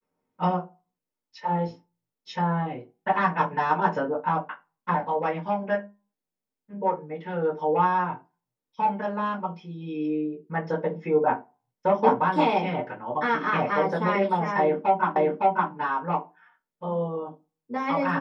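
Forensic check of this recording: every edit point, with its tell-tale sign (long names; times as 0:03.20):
0:15.16: the same again, the last 0.56 s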